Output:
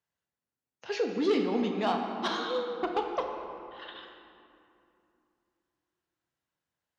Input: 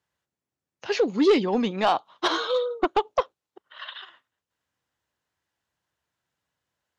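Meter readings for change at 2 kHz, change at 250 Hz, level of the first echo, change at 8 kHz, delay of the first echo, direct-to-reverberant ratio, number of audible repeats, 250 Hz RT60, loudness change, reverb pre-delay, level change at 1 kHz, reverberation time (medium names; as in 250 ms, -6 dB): -6.5 dB, -5.0 dB, no echo, no reading, no echo, 2.5 dB, no echo, 3.8 s, -6.5 dB, 4 ms, -6.5 dB, 2.7 s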